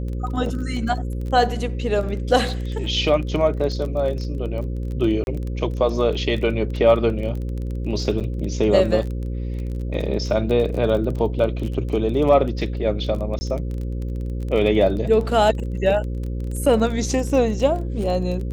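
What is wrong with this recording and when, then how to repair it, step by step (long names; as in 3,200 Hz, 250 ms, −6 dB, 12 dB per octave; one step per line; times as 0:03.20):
mains buzz 60 Hz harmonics 9 −26 dBFS
surface crackle 22 per second −28 dBFS
0:05.24–0:05.27: drop-out 31 ms
0:08.20–0:08.21: drop-out 7.4 ms
0:13.39–0:13.41: drop-out 20 ms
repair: click removal
hum removal 60 Hz, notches 9
repair the gap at 0:05.24, 31 ms
repair the gap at 0:08.20, 7.4 ms
repair the gap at 0:13.39, 20 ms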